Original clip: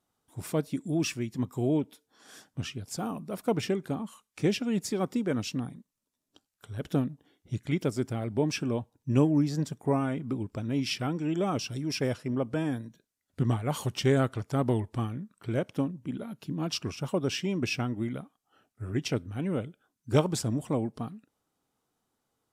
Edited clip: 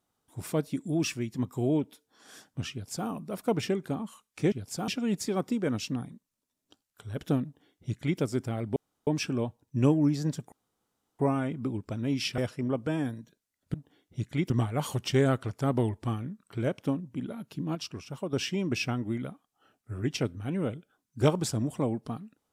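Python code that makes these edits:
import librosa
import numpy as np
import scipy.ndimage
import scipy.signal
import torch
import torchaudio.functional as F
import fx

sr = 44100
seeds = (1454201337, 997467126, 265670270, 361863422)

y = fx.edit(x, sr, fx.duplicate(start_s=2.72, length_s=0.36, to_s=4.52),
    fx.duplicate(start_s=7.08, length_s=0.76, to_s=13.41),
    fx.insert_room_tone(at_s=8.4, length_s=0.31),
    fx.insert_room_tone(at_s=9.85, length_s=0.67),
    fx.cut(start_s=11.04, length_s=1.01),
    fx.clip_gain(start_s=16.66, length_s=0.58, db=-6.0), tone=tone)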